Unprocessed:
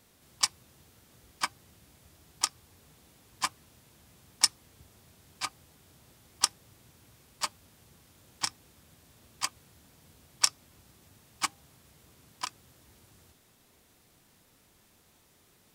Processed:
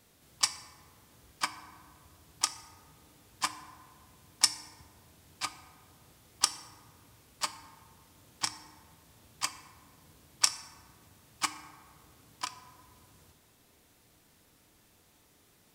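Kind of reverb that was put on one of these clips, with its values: FDN reverb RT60 1.8 s, low-frequency decay 0.85×, high-frequency decay 0.4×, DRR 9.5 dB; trim -1 dB

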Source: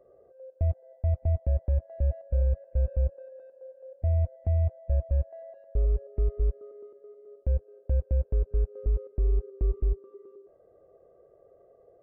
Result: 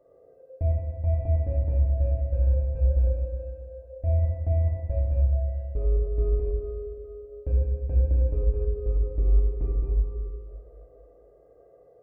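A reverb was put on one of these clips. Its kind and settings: FDN reverb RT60 1.6 s, low-frequency decay 1.2×, high-frequency decay 0.75×, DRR -4 dB; trim -3 dB

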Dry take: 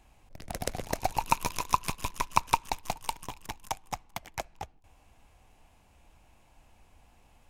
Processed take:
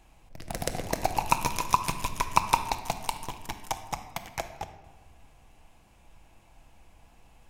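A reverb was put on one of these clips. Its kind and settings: simulated room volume 1000 m³, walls mixed, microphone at 0.69 m; trim +2 dB

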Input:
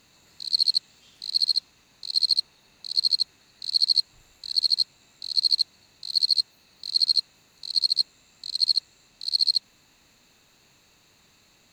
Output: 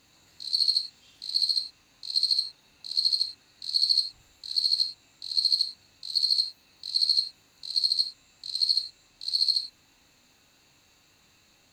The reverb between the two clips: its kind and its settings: gated-style reverb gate 130 ms falling, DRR 3.5 dB; trim -3.5 dB

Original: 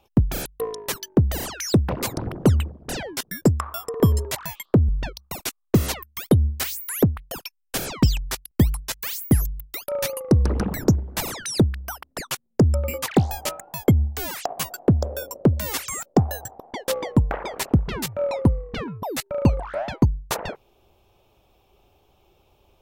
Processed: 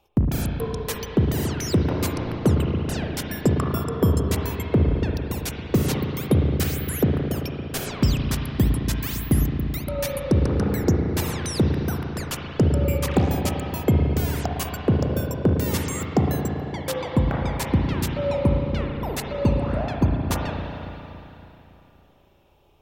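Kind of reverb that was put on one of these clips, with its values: spring tank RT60 3.2 s, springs 35/56 ms, chirp 75 ms, DRR 0 dB; trim -3 dB

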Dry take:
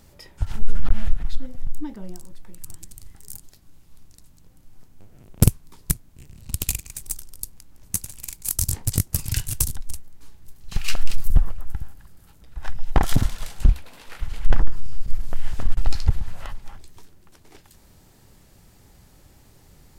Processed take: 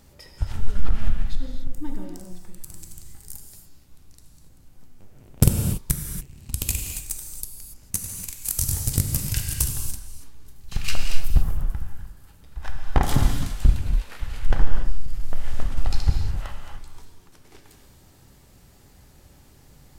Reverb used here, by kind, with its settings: gated-style reverb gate 310 ms flat, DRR 2.5 dB; trim -1.5 dB

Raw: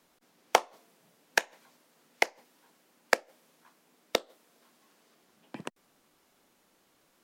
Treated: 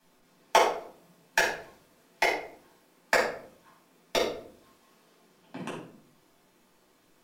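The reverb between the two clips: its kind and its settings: simulated room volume 710 m³, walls furnished, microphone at 8.6 m; trim -7 dB

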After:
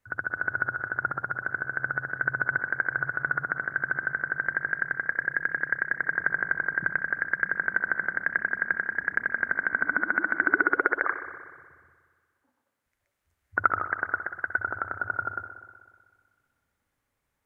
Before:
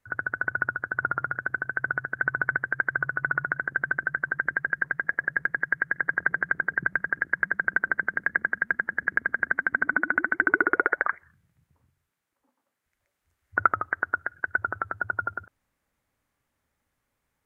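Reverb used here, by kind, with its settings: spring tank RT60 1.7 s, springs 60 ms, chirp 30 ms, DRR 8 dB; trim -1.5 dB

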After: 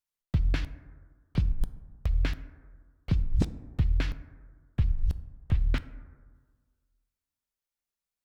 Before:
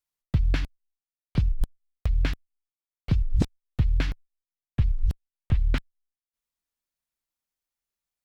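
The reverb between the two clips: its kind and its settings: plate-style reverb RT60 1.6 s, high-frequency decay 0.3×, DRR 13.5 dB; trim -3 dB

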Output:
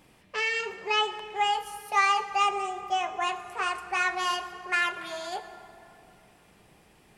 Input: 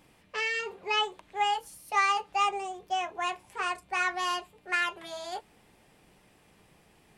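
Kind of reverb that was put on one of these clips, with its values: plate-style reverb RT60 2.9 s, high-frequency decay 0.5×, DRR 9.5 dB; trim +2 dB

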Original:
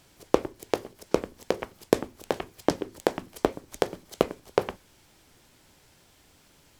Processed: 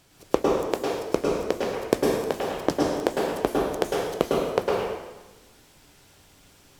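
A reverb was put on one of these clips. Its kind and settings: plate-style reverb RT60 1.1 s, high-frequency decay 0.9×, pre-delay 95 ms, DRR -3.5 dB; trim -1 dB

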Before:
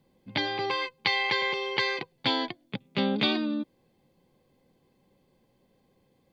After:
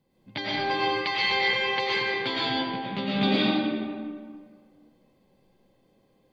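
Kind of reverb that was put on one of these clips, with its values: algorithmic reverb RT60 1.8 s, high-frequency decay 0.6×, pre-delay 70 ms, DRR -7 dB; trim -5 dB

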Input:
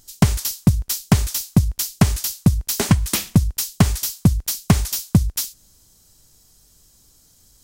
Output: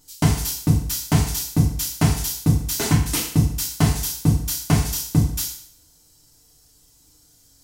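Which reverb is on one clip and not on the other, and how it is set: FDN reverb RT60 0.62 s, low-frequency decay 0.8×, high-frequency decay 0.95×, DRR -5.5 dB; trim -7.5 dB

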